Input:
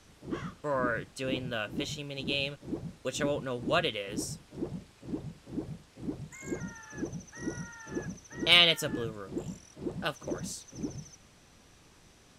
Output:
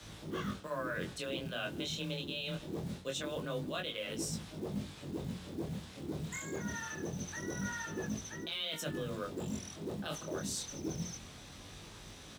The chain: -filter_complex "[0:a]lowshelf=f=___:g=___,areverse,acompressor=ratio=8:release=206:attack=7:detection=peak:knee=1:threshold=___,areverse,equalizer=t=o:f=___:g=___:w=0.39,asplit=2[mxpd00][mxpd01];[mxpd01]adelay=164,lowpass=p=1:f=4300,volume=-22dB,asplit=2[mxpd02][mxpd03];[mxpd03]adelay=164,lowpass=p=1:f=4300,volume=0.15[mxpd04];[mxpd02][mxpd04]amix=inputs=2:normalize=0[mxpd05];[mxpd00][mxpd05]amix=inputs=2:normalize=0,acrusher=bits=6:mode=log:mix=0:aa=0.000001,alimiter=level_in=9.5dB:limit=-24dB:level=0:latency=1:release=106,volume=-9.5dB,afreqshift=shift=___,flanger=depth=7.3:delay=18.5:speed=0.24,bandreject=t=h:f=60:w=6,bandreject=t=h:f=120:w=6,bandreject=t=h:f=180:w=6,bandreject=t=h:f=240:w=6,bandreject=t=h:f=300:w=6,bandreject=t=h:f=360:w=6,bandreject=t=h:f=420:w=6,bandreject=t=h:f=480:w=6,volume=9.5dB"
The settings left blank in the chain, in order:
170, 2.5, -41dB, 3600, 6, 21